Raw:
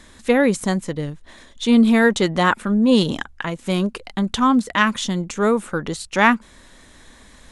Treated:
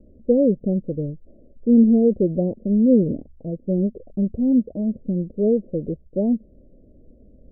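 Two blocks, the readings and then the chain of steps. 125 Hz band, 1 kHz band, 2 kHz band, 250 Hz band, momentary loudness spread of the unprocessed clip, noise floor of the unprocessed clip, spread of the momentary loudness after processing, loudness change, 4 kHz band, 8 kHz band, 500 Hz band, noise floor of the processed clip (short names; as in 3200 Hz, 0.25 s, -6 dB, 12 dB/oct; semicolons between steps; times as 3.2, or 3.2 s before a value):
0.0 dB, under -25 dB, under -40 dB, 0.0 dB, 11 LU, -48 dBFS, 13 LU, -1.5 dB, under -40 dB, under -40 dB, -0.5 dB, -51 dBFS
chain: steep low-pass 610 Hz 72 dB/oct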